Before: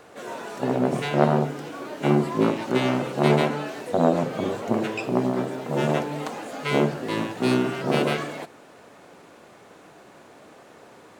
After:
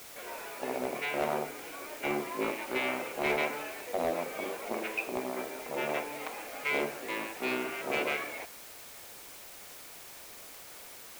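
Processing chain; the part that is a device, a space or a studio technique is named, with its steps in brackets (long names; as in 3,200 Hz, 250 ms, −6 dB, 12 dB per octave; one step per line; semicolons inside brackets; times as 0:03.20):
drive-through speaker (band-pass filter 410–3,600 Hz; parametric band 2,300 Hz +11.5 dB 0.38 octaves; hard clipping −15 dBFS, distortion −15 dB; white noise bed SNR 13 dB)
level −7.5 dB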